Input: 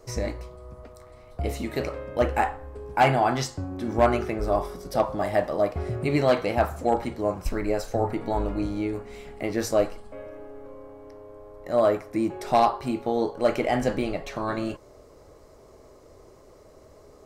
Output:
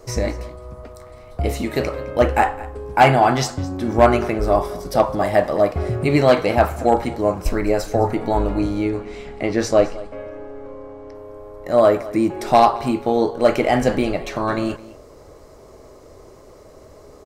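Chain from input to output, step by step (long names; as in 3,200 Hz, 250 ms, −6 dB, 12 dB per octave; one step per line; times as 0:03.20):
0:08.89–0:11.15: low-pass filter 6,600 Hz 12 dB per octave
single-tap delay 212 ms −19 dB
level +7 dB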